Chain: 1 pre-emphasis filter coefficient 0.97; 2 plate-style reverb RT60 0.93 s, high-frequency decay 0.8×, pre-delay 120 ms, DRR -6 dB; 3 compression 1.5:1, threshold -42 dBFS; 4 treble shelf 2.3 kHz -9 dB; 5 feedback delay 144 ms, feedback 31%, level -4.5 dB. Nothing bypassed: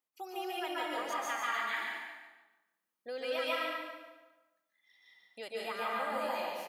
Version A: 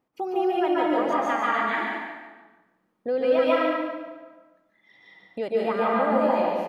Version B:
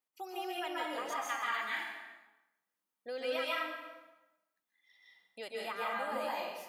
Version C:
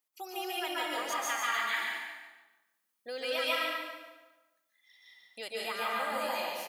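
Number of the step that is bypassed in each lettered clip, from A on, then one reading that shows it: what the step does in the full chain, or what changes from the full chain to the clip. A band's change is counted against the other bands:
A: 1, 4 kHz band -12.0 dB; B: 5, loudness change -1.0 LU; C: 4, 8 kHz band +6.5 dB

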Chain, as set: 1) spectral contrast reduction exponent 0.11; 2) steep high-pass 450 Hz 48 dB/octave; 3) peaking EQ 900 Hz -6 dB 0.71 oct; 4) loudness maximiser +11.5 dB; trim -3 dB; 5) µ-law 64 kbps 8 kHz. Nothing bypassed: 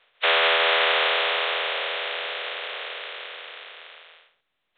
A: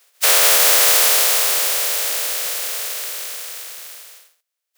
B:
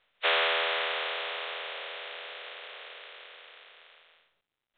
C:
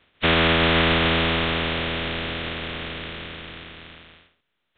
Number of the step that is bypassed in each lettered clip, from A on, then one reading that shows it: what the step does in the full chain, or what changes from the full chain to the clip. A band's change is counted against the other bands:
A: 5, 4 kHz band +4.0 dB; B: 4, crest factor change +3.5 dB; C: 2, 250 Hz band +24.5 dB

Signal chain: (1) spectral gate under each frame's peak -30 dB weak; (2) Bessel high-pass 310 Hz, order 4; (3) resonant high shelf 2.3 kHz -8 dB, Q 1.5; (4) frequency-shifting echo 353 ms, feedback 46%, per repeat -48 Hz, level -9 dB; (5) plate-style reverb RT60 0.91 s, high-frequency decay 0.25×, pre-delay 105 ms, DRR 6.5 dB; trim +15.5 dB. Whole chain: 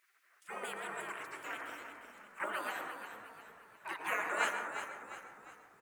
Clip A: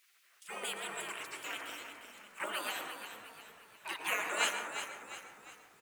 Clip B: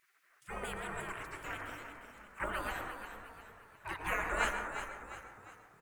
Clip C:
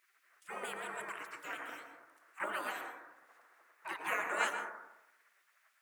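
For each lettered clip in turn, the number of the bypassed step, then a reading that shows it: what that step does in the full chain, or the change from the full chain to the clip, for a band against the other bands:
3, 4 kHz band +9.5 dB; 2, 125 Hz band +15.0 dB; 4, echo-to-direct -4.0 dB to -6.5 dB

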